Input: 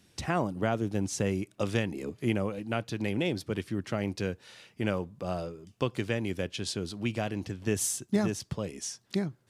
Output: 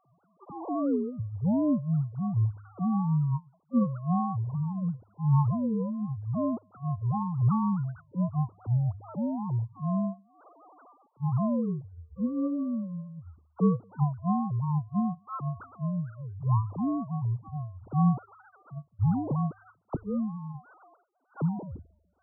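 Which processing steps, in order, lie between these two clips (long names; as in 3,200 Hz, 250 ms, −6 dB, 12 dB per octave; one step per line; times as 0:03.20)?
three sine waves on the formant tracks
mains-hum notches 60/120/180/240 Hz
wrong playback speed 78 rpm record played at 33 rpm
level +2.5 dB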